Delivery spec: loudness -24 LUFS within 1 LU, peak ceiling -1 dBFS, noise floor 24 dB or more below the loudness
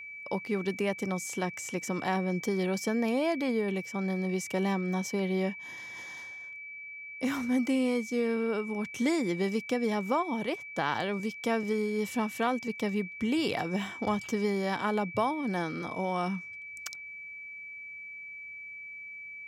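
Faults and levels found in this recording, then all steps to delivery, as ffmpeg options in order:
steady tone 2300 Hz; tone level -41 dBFS; loudness -32.0 LUFS; peak -15.5 dBFS; loudness target -24.0 LUFS
-> -af "bandreject=f=2.3k:w=30"
-af "volume=8dB"

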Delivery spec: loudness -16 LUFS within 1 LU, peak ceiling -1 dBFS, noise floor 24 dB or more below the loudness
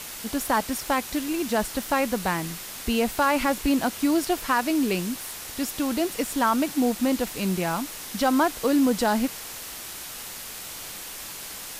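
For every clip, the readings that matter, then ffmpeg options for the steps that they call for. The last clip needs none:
noise floor -38 dBFS; noise floor target -50 dBFS; loudness -26.0 LUFS; peak -11.0 dBFS; loudness target -16.0 LUFS
-> -af "afftdn=nr=12:nf=-38"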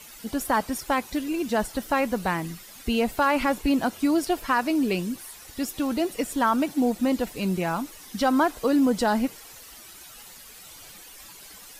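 noise floor -46 dBFS; noise floor target -50 dBFS
-> -af "afftdn=nr=6:nf=-46"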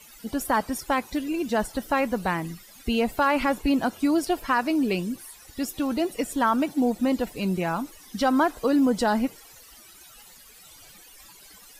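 noise floor -50 dBFS; loudness -25.5 LUFS; peak -11.5 dBFS; loudness target -16.0 LUFS
-> -af "volume=9.5dB"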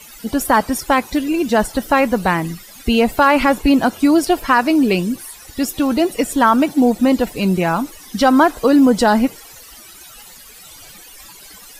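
loudness -16.0 LUFS; peak -2.0 dBFS; noise floor -41 dBFS

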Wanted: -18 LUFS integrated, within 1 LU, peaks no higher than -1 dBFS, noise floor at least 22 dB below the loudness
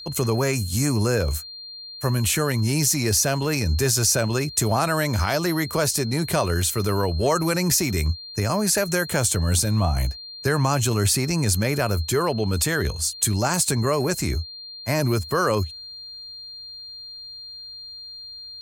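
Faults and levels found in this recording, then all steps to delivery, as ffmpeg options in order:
steady tone 4200 Hz; tone level -36 dBFS; loudness -22.0 LUFS; peak -6.5 dBFS; loudness target -18.0 LUFS
-> -af "bandreject=f=4.2k:w=30"
-af "volume=4dB"

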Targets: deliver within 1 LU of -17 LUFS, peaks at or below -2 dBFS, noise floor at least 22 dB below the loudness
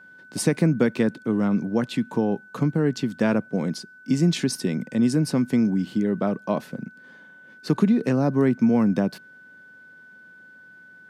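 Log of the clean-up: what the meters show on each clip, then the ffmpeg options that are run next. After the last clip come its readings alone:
steady tone 1500 Hz; tone level -46 dBFS; loudness -23.0 LUFS; peak -7.5 dBFS; loudness target -17.0 LUFS
-> -af "bandreject=f=1.5k:w=30"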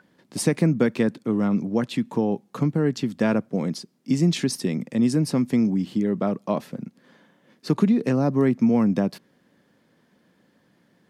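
steady tone none; loudness -23.5 LUFS; peak -7.5 dBFS; loudness target -17.0 LUFS
-> -af "volume=6.5dB,alimiter=limit=-2dB:level=0:latency=1"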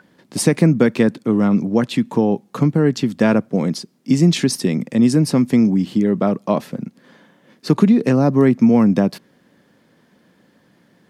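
loudness -17.0 LUFS; peak -2.0 dBFS; noise floor -57 dBFS

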